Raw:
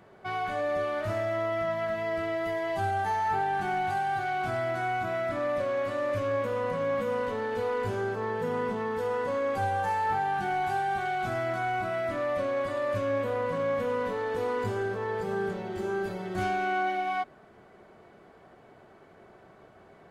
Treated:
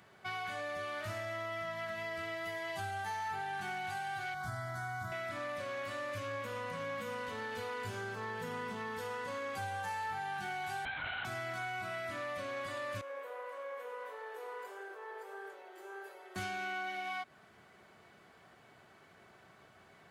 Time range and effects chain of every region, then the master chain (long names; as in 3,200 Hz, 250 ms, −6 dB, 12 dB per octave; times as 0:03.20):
0:04.34–0:05.12: low-shelf EQ 130 Hz +11.5 dB + phaser with its sweep stopped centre 1,100 Hz, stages 4
0:10.85–0:11.25: lower of the sound and its delayed copy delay 4.6 ms + linear-prediction vocoder at 8 kHz whisper
0:13.01–0:16.36: Butterworth high-pass 400 Hz + parametric band 4,800 Hz −13 dB 2.4 octaves + flanger 1.6 Hz, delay 6.3 ms, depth 7.9 ms, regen −71%
whole clip: high-pass filter 79 Hz; guitar amp tone stack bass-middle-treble 5-5-5; downward compressor 2.5 to 1, threshold −48 dBFS; level +10 dB